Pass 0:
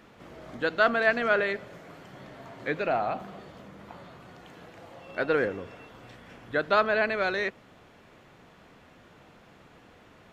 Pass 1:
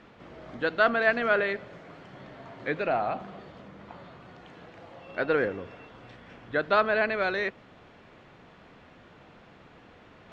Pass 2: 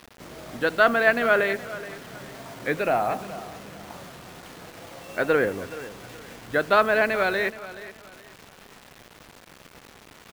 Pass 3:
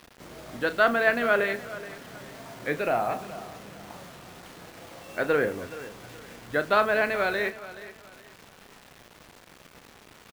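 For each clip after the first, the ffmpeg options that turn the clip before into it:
-af "lowpass=4.7k,areverse,acompressor=mode=upward:threshold=-48dB:ratio=2.5,areverse"
-af "acrusher=bits=7:mix=0:aa=0.000001,aecho=1:1:424|848|1272:0.158|0.0475|0.0143,volume=4dB"
-filter_complex "[0:a]asplit=2[a][b];[b]adelay=34,volume=-11.5dB[c];[a][c]amix=inputs=2:normalize=0,volume=-3dB"

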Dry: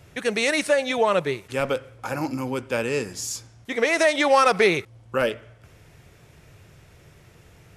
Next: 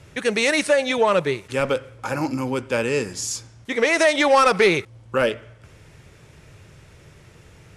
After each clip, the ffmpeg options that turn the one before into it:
-af "lowpass=f=11k:w=0.5412,lowpass=f=11k:w=1.3066,bandreject=f=710:w=12,acontrast=88,volume=-4dB"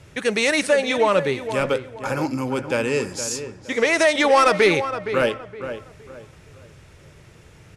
-filter_complex "[0:a]asplit=2[a][b];[b]adelay=466,lowpass=f=2.1k:p=1,volume=-10dB,asplit=2[c][d];[d]adelay=466,lowpass=f=2.1k:p=1,volume=0.32,asplit=2[e][f];[f]adelay=466,lowpass=f=2.1k:p=1,volume=0.32,asplit=2[g][h];[h]adelay=466,lowpass=f=2.1k:p=1,volume=0.32[i];[a][c][e][g][i]amix=inputs=5:normalize=0"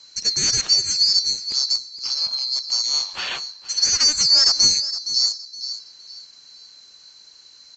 -af "afftfilt=real='real(if(lt(b,736),b+184*(1-2*mod(floor(b/184),2)),b),0)':imag='imag(if(lt(b,736),b+184*(1-2*mod(floor(b/184),2)),b),0)':win_size=2048:overlap=0.75,aresample=16000,aresample=44100"

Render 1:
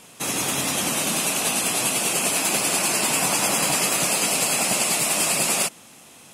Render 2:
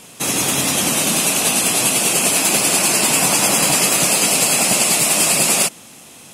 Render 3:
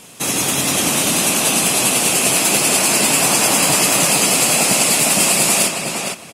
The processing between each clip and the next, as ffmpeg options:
-af "equalizer=f=1.2k:w=0.59:g=-3,volume=7dB"
-filter_complex "[0:a]asplit=2[a][b];[b]adelay=460,lowpass=f=4.1k:p=1,volume=-3.5dB,asplit=2[c][d];[d]adelay=460,lowpass=f=4.1k:p=1,volume=0.19,asplit=2[e][f];[f]adelay=460,lowpass=f=4.1k:p=1,volume=0.19[g];[a][c][e][g]amix=inputs=4:normalize=0"

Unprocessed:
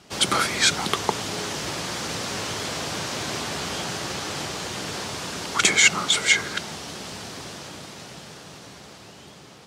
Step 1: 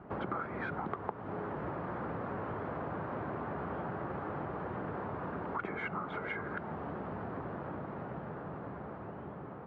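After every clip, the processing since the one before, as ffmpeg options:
-af "lowpass=f=1.4k:w=0.5412,lowpass=f=1.4k:w=1.3066,acompressor=threshold=-40dB:ratio=4,volume=3dB"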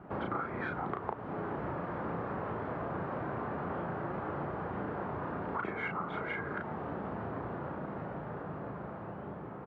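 -filter_complex "[0:a]asplit=2[a][b];[b]adelay=35,volume=-3.5dB[c];[a][c]amix=inputs=2:normalize=0"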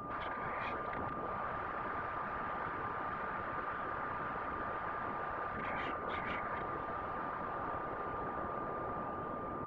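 -af "afftfilt=real='re*lt(hypot(re,im),0.0398)':imag='im*lt(hypot(re,im),0.0398)':win_size=1024:overlap=0.75,afftfilt=real='hypot(re,im)*cos(2*PI*random(0))':imag='hypot(re,im)*sin(2*PI*random(1))':win_size=512:overlap=0.75,aeval=exprs='val(0)+0.00251*sin(2*PI*1200*n/s)':c=same,volume=9dB"

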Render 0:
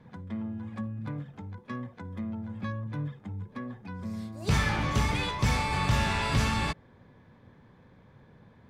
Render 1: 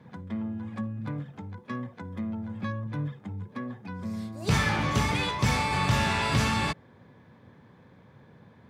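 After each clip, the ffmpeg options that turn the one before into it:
-af "highpass=87,volume=2.5dB"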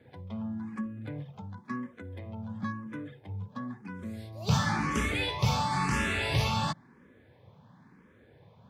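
-filter_complex "[0:a]asplit=2[a][b];[b]afreqshift=0.97[c];[a][c]amix=inputs=2:normalize=1"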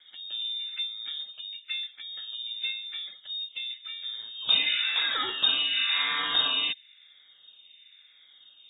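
-af "lowpass=f=3.2k:t=q:w=0.5098,lowpass=f=3.2k:t=q:w=0.6013,lowpass=f=3.2k:t=q:w=0.9,lowpass=f=3.2k:t=q:w=2.563,afreqshift=-3800,volume=2dB"

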